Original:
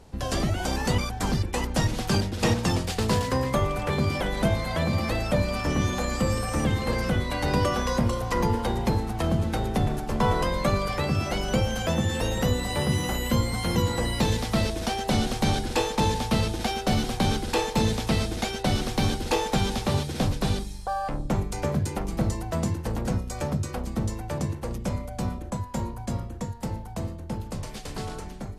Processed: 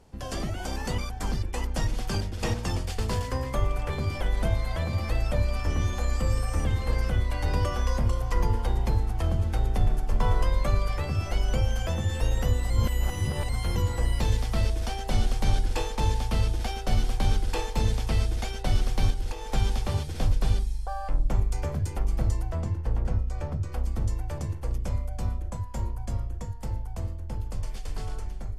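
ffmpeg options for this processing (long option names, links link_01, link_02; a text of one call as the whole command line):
ffmpeg -i in.wav -filter_complex "[0:a]asettb=1/sr,asplit=3[link_01][link_02][link_03];[link_01]atrim=end=19.104[link_04];[link_02]atrim=start=19.1:end=19.51,asetpts=PTS-STARTPTS,afade=type=in:duration=0.004:curve=qsin,afade=type=out:start_time=0.406:duration=0.004:curve=qsin,acompressor=threshold=-28dB:ratio=10:attack=3.2:release=140:knee=1:detection=peak[link_05];[link_03]atrim=start=19.506[link_06];[link_04][link_05]acrossfade=duration=0.004:curve1=hsin:curve2=qsin[link_07];[link_07][link_06]acrossfade=duration=0.004:curve1=qsin:curve2=hsin,asettb=1/sr,asplit=3[link_08][link_09][link_10];[link_08]atrim=end=22.524[link_11];[link_09]atrim=start=22.52:end=23.72,asetpts=PTS-STARTPTS,afade=type=in:duration=0.004:curve=qsin,afade=type=out:start_time=1.196:duration=0.004:curve=qsin,lowpass=frequency=2400:poles=1[link_12];[link_10]atrim=start=23.716[link_13];[link_11][link_12]acrossfade=duration=0.004:curve1=hsin:curve2=qsin[link_14];[link_14][link_13]acrossfade=duration=0.004:curve1=qsin:curve2=hsin,asplit=3[link_15][link_16][link_17];[link_15]atrim=end=12.702[link_18];[link_16]atrim=start=12.698:end=13.492,asetpts=PTS-STARTPTS,areverse[link_19];[link_17]atrim=start=13.488[link_20];[link_18][link_19]acrossfade=duration=0.004:curve1=hsin:curve2=hsin[link_21];[link_21][link_20]acrossfade=duration=0.004:curve1=hsin:curve2=hsin,bandreject=frequency=3900:width=14,asubboost=boost=7.5:cutoff=66,volume=-6dB" out.wav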